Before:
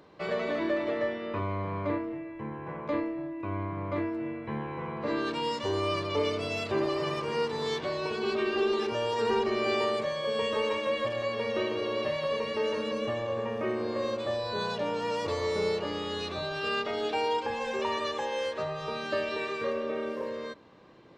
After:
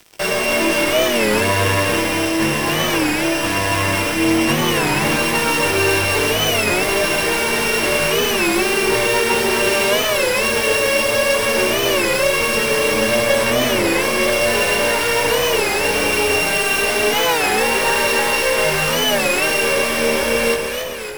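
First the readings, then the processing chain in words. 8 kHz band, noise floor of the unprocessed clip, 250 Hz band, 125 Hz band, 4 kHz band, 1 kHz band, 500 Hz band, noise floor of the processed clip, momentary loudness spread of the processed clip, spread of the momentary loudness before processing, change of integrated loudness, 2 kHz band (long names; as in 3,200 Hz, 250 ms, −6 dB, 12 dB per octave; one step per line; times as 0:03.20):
+30.5 dB, −40 dBFS, +13.0 dB, +12.5 dB, +18.0 dB, +13.0 dB, +11.5 dB, −20 dBFS, 2 LU, 7 LU, +15.0 dB, +20.0 dB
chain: samples sorted by size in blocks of 16 samples
low-shelf EQ 480 Hz −8 dB
notch filter 1,200 Hz, Q 15
in parallel at −1.5 dB: compressor whose output falls as the input rises −40 dBFS
on the sum: fuzz pedal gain 35 dB, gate −44 dBFS
floating-point word with a short mantissa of 2 bits
multi-voice chorus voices 2, 0.56 Hz, delay 19 ms, depth 2.8 ms
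on a send: delay that swaps between a low-pass and a high-pass 141 ms, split 1,100 Hz, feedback 78%, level −3 dB
on the sum: wow of a warped record 33 1/3 rpm, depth 160 cents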